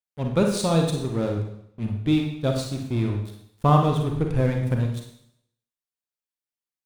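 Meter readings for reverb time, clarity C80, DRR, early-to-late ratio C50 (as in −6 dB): 0.70 s, 8.0 dB, 2.0 dB, 4.5 dB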